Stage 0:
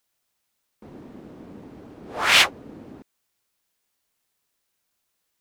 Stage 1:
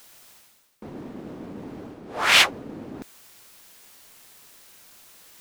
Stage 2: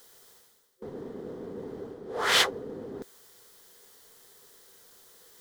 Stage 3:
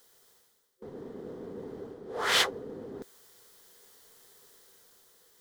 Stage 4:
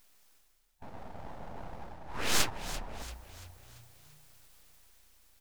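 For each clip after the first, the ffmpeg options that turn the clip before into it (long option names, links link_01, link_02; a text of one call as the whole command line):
ffmpeg -i in.wav -af "equalizer=frequency=60:width_type=o:width=1.1:gain=-5,areverse,acompressor=mode=upward:threshold=-30dB:ratio=2.5,areverse" out.wav
ffmpeg -i in.wav -af "superequalizer=7b=3.16:12b=0.398,volume=-5dB" out.wav
ffmpeg -i in.wav -af "dynaudnorm=framelen=250:gausssize=7:maxgain=4.5dB,volume=-6.5dB" out.wav
ffmpeg -i in.wav -filter_complex "[0:a]aeval=exprs='abs(val(0))':channel_layout=same,asplit=6[link_01][link_02][link_03][link_04][link_05][link_06];[link_02]adelay=340,afreqshift=-30,volume=-13dB[link_07];[link_03]adelay=680,afreqshift=-60,volume=-19.2dB[link_08];[link_04]adelay=1020,afreqshift=-90,volume=-25.4dB[link_09];[link_05]adelay=1360,afreqshift=-120,volume=-31.6dB[link_10];[link_06]adelay=1700,afreqshift=-150,volume=-37.8dB[link_11];[link_01][link_07][link_08][link_09][link_10][link_11]amix=inputs=6:normalize=0" out.wav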